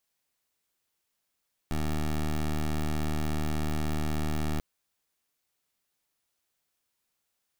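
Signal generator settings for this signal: pulse 76.5 Hz, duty 15% -28.5 dBFS 2.89 s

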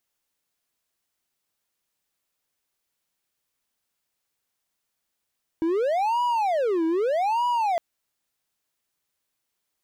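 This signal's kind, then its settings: siren wail 323–974 Hz 0.81 per s triangle -18.5 dBFS 2.16 s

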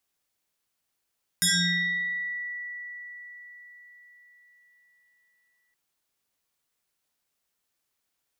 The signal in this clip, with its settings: FM tone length 4.32 s, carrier 1.95 kHz, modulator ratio 0.91, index 6.5, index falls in 1.13 s exponential, decay 4.96 s, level -19 dB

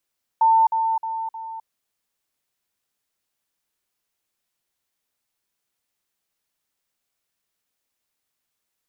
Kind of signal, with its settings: level ladder 897 Hz -12.5 dBFS, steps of -6 dB, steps 4, 0.26 s 0.05 s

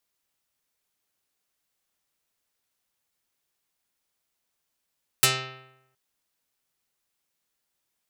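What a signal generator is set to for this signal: plucked string C3, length 0.72 s, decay 0.87 s, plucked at 0.46, dark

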